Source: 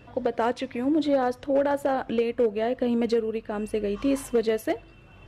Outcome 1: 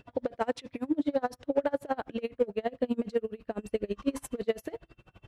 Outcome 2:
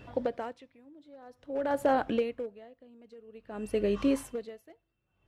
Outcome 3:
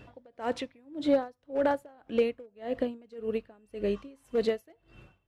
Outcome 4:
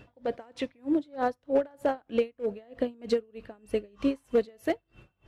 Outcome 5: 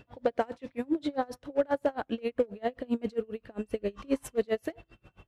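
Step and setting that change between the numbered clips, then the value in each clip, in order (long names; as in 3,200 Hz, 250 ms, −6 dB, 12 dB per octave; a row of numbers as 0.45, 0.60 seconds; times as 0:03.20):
tremolo with a sine in dB, speed: 12, 0.51, 1.8, 3.2, 7.5 Hertz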